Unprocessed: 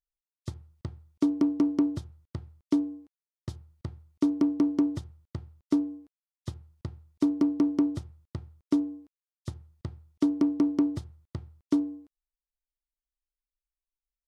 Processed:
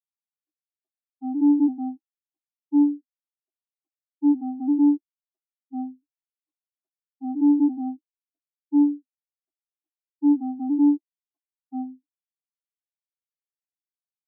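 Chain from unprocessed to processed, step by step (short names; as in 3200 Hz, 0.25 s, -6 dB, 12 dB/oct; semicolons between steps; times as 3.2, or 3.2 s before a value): trilling pitch shifter -2 st, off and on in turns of 0.334 s; comb 7.3 ms, depth 56%; in parallel at +1 dB: negative-ratio compressor -25 dBFS, ratio -0.5; on the sum: sample leveller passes 3; ladder high-pass 260 Hz, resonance 45%; band shelf 1000 Hz +12 dB; spectral expander 4:1; gain -1.5 dB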